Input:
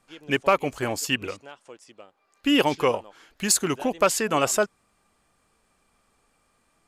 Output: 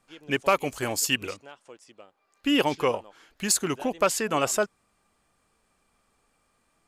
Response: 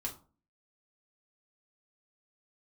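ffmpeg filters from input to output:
-filter_complex "[0:a]asettb=1/sr,asplit=3[link_01][link_02][link_03];[link_01]atrim=end=0.394[link_04];[link_02]atrim=start=0.39:end=1.34,asetpts=PTS-STARTPTS,afade=type=in:duration=0.004:curve=qsin,afade=type=out:start_time=0.946:duration=0.004:curve=qsin,highshelf=frequency=4100:gain=9[link_05];[link_03]atrim=start=1.336[link_06];[link_04][link_05]acrossfade=duration=0.004:curve1=hsin:curve2=qsin[link_07];[link_07][link_06]acrossfade=duration=0.004:curve1=qsin:curve2=hsin,volume=-2.5dB"

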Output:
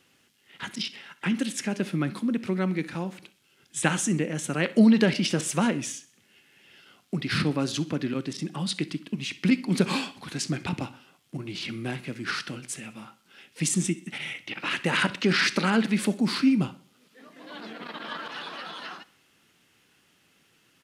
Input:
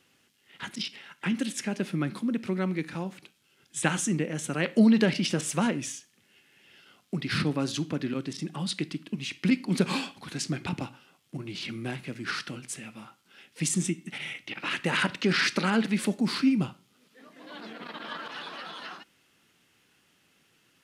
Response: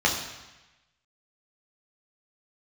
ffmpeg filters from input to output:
-af "aecho=1:1:64|128|192|256:0.0891|0.0437|0.0214|0.0105,volume=2dB"

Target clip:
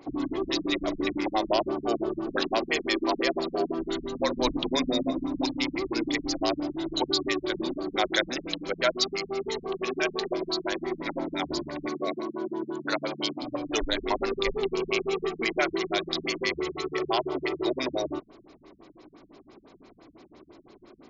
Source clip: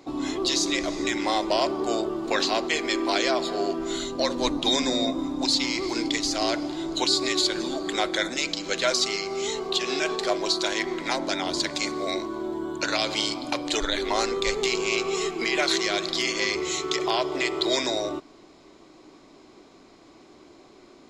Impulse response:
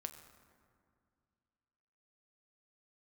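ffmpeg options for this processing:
-filter_complex "[0:a]asettb=1/sr,asplit=3[link_01][link_02][link_03];[link_01]atrim=end=8.084[link_04];[link_02]atrim=start=8.08:end=8.59,asetpts=PTS-STARTPTS,afade=type=in:duration=0.004:curve=qsin,afade=type=out:start_time=0.506:duration=0.004:curve=qsin,highshelf=frequency=2200:gain=8[link_05];[link_03]atrim=start=8.586[link_06];[link_04][link_05]acrossfade=duration=0.004:curve1=hsin:curve2=qsin[link_07];[link_07][link_06]acrossfade=duration=0.004:curve1=qsin:curve2=hsin,asettb=1/sr,asplit=3[link_08][link_09][link_10];[link_08]atrim=end=11.874[link_11];[link_09]atrim=start=11.87:end=13.42,asetpts=PTS-STARTPTS,afade=type=in:duration=0.004:curve=qsin,afade=type=out:start_time=1.546:duration=0.004:curve=qsin,highpass=frequency=140:width=0.5412,highpass=frequency=140:width=1.3066[link_12];[link_10]atrim=start=13.416[link_13];[link_11][link_12]acrossfade=duration=0.004:curve1=hsin:curve2=qsin[link_14];[link_14][link_13]acrossfade=duration=0.004:curve1=qsin:curve2=hsin,afftfilt=real='re*lt(b*sr/1024,200*pow(7400/200,0.5+0.5*sin(2*PI*5.9*pts/sr)))':imag='im*lt(b*sr/1024,200*pow(7400/200,0.5+0.5*sin(2*PI*5.9*pts/sr)))':win_size=1024:overlap=0.75"

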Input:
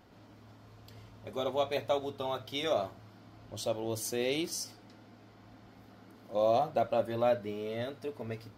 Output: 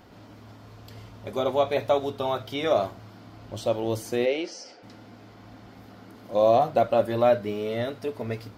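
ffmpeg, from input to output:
ffmpeg -i in.wav -filter_complex "[0:a]asplit=3[link_01][link_02][link_03];[link_01]afade=type=out:start_time=4.25:duration=0.02[link_04];[link_02]highpass=420,equalizer=frequency=530:width_type=q:width=4:gain=6,equalizer=frequency=1100:width_type=q:width=4:gain=-9,equalizer=frequency=3700:width_type=q:width=4:gain=-9,lowpass=frequency=5700:width=0.5412,lowpass=frequency=5700:width=1.3066,afade=type=in:start_time=4.25:duration=0.02,afade=type=out:start_time=4.82:duration=0.02[link_05];[link_03]afade=type=in:start_time=4.82:duration=0.02[link_06];[link_04][link_05][link_06]amix=inputs=3:normalize=0,acrossover=split=2600[link_07][link_08];[link_08]acompressor=threshold=-48dB:ratio=4:attack=1:release=60[link_09];[link_07][link_09]amix=inputs=2:normalize=0,volume=8dB" out.wav

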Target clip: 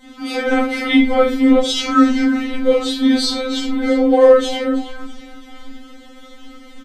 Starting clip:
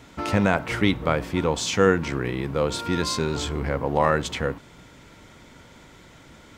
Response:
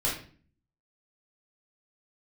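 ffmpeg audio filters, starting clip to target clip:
-filter_complex "[0:a]asetrate=42336,aresample=44100,asplit=5[link_01][link_02][link_03][link_04][link_05];[link_02]adelay=328,afreqshift=-44,volume=-15dB[link_06];[link_03]adelay=656,afreqshift=-88,volume=-21.9dB[link_07];[link_04]adelay=984,afreqshift=-132,volume=-28.9dB[link_08];[link_05]adelay=1312,afreqshift=-176,volume=-35.8dB[link_09];[link_01][link_06][link_07][link_08][link_09]amix=inputs=5:normalize=0[link_10];[1:a]atrim=start_sample=2205,afade=type=out:start_time=0.18:duration=0.01,atrim=end_sample=8379[link_11];[link_10][link_11]afir=irnorm=-1:irlink=0,afftfilt=real='re*3.46*eq(mod(b,12),0)':imag='im*3.46*eq(mod(b,12),0)':win_size=2048:overlap=0.75,volume=1dB"

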